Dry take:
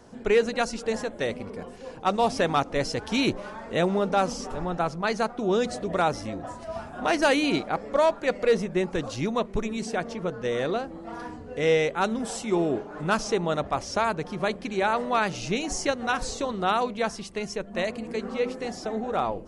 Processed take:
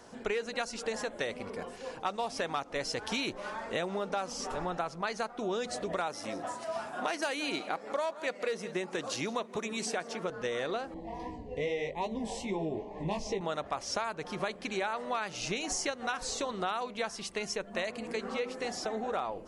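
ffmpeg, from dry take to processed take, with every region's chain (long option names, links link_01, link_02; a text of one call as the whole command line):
ffmpeg -i in.wav -filter_complex "[0:a]asettb=1/sr,asplit=3[link_01][link_02][link_03];[link_01]atrim=end=6.074[link_04];[link_02]atrim=start=6.07:end=10.3,asetpts=PTS-STARTPTS,afade=type=in:duration=0.004:curve=qsin,afade=type=out:start_time=4.226:duration=0.004:curve=qsin,highpass=150,highshelf=frequency=8800:gain=5.5,aecho=1:1:168:0.112,atrim=end_sample=186543[link_05];[link_03]atrim=start=10.296[link_06];[link_04][link_05]acrossfade=duration=0.004:curve1=hsin:curve2=qsin[link_07];[link_07][link_06]acrossfade=duration=0.004:curve1=qsin:curve2=hsin,asettb=1/sr,asplit=3[link_08][link_09][link_10];[link_08]atrim=end=10.944[link_11];[link_09]atrim=start=10.94:end=13.41,asetpts=PTS-STARTPTS,afade=type=in:duration=0.004:curve=qsin,afade=type=out:start_time=2.466:duration=0.004:curve=qsin,asuperstop=centerf=1400:order=8:qfactor=1.8,aemphasis=mode=reproduction:type=bsi,flanger=delay=15:depth=4.7:speed=2.5[link_12];[link_10]atrim=start=13.406[link_13];[link_11][link_12]acrossfade=duration=0.004:curve1=hsin:curve2=qsin[link_14];[link_14][link_13]acrossfade=duration=0.004:curve1=qsin:curve2=hsin,lowshelf=frequency=380:gain=-11,acompressor=threshold=-33dB:ratio=6,volume=2.5dB" out.wav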